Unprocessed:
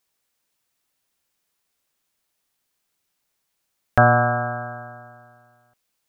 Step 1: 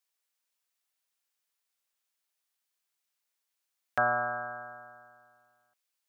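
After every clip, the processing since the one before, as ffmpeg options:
-af "highpass=f=930:p=1,volume=-8dB"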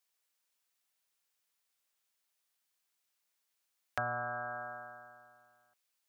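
-filter_complex "[0:a]acrossover=split=150[a][b];[b]acompressor=threshold=-38dB:ratio=3[c];[a][c]amix=inputs=2:normalize=0,volume=1.5dB"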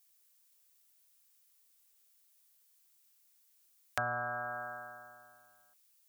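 -af "crystalizer=i=2.5:c=0"

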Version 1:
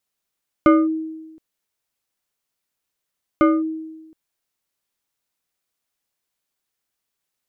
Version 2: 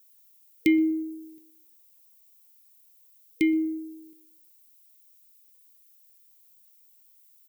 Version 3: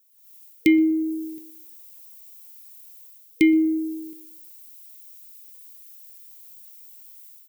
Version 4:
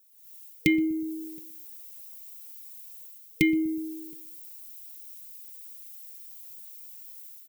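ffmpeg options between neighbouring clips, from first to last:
-filter_complex "[0:a]aemphasis=mode=production:type=riaa,asplit=2[a][b];[b]adelay=123,lowpass=f=960:p=1,volume=-14.5dB,asplit=2[c][d];[d]adelay=123,lowpass=f=960:p=1,volume=0.36,asplit=2[e][f];[f]adelay=123,lowpass=f=960:p=1,volume=0.36[g];[a][c][e][g]amix=inputs=4:normalize=0,afftfilt=real='re*(1-between(b*sr/4096,470,1900))':imag='im*(1-between(b*sr/4096,470,1900))':win_size=4096:overlap=0.75"
-af "dynaudnorm=f=110:g=5:m=16dB,volume=-3.5dB"
-af "lowshelf=f=190:t=q:w=3:g=7.5,aecho=1:1:4.4:0.48"

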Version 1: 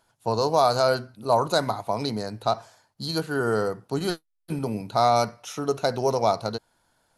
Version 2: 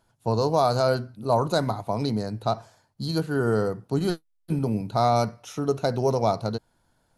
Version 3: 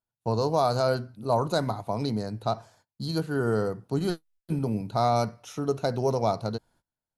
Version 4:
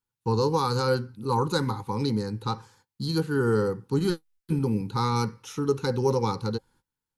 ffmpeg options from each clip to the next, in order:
-af "lowshelf=f=370:g=10.5,volume=-4dB"
-af "agate=range=-24dB:threshold=-56dB:ratio=16:detection=peak,volume=-2.5dB"
-af "asuperstop=centerf=650:order=20:qfactor=2.7,volume=2.5dB"

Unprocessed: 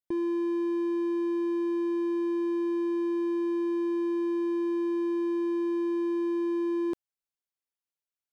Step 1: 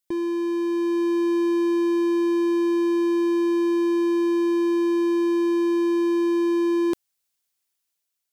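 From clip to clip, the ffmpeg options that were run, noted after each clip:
-af "highshelf=f=2.5k:g=10.5,dynaudnorm=f=340:g=5:m=4dB,volume=3dB"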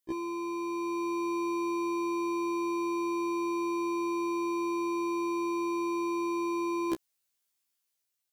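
-af "afftfilt=real='re*1.73*eq(mod(b,3),0)':imag='im*1.73*eq(mod(b,3),0)':win_size=2048:overlap=0.75"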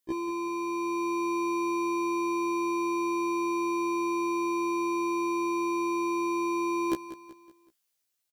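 -af "aecho=1:1:188|376|564|752:0.2|0.0898|0.0404|0.0182,volume=2.5dB"

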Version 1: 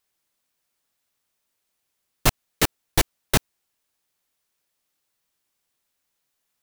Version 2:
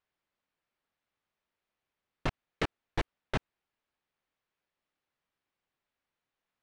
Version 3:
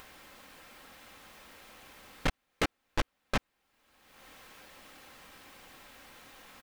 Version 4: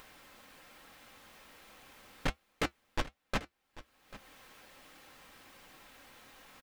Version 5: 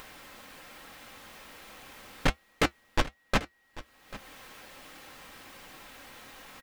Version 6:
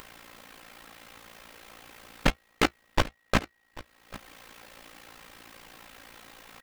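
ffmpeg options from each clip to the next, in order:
-af "lowpass=2.6k,alimiter=limit=-15.5dB:level=0:latency=1:release=48,volume=-4dB"
-filter_complex "[0:a]aecho=1:1:3.8:0.36,asplit=2[a][b];[b]acompressor=mode=upward:threshold=-31dB:ratio=2.5,volume=0dB[c];[a][c]amix=inputs=2:normalize=0,volume=26.5dB,asoftclip=hard,volume=-26.5dB,volume=2.5dB"
-af "flanger=delay=5.8:depth=2.9:regen=-64:speed=1.2:shape=triangular,aecho=1:1:791:0.133,volume=1dB"
-af "aeval=exprs='val(0)+0.0002*sin(2*PI*1900*n/s)':c=same,volume=7.5dB"
-filter_complex "[0:a]tremolo=f=57:d=0.788,asplit=2[a][b];[b]acrusher=bits=5:mix=0:aa=0.000001,volume=-9dB[c];[a][c]amix=inputs=2:normalize=0,volume=2.5dB"

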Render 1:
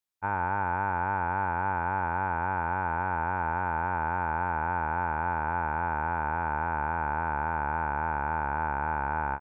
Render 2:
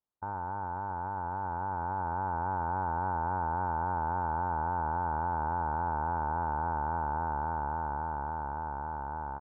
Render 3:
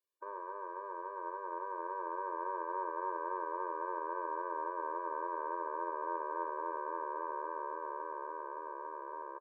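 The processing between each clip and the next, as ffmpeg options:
-af "lowpass=f=1.2k:w=0.5412,lowpass=f=1.2k:w=1.3066,alimiter=level_in=5.5dB:limit=-24dB:level=0:latency=1:release=34,volume=-5.5dB,dynaudnorm=f=300:g=13:m=5dB,volume=2.5dB"
-filter_complex "[0:a]asplit=2[a][b];[b]adelay=35,volume=-11.5dB[c];[a][c]amix=inputs=2:normalize=0,afftfilt=real='re*eq(mod(floor(b*sr/1024/310),2),1)':imag='im*eq(mod(floor(b*sr/1024/310),2),1)':win_size=1024:overlap=0.75,volume=2dB"

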